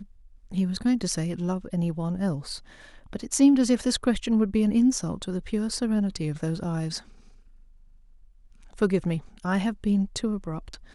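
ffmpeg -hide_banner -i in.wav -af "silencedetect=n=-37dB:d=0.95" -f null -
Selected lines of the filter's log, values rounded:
silence_start: 6.99
silence_end: 8.78 | silence_duration: 1.79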